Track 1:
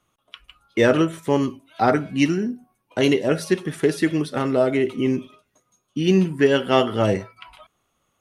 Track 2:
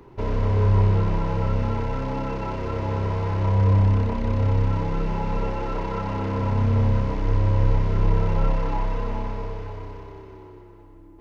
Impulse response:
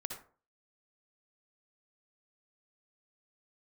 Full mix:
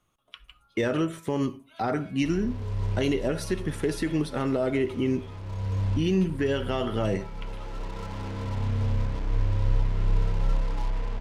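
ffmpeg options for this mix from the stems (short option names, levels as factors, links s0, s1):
-filter_complex "[0:a]alimiter=limit=0.224:level=0:latency=1:release=69,volume=0.531,asplit=3[s0][s1][s2];[s1]volume=0.2[s3];[1:a]acrusher=bits=4:mix=0:aa=0.5,adelay=2050,volume=0.299[s4];[s2]apad=whole_len=584697[s5];[s4][s5]sidechaincompress=threshold=0.0224:ratio=8:attack=35:release=1270[s6];[2:a]atrim=start_sample=2205[s7];[s3][s7]afir=irnorm=-1:irlink=0[s8];[s0][s6][s8]amix=inputs=3:normalize=0,lowshelf=f=81:g=9.5"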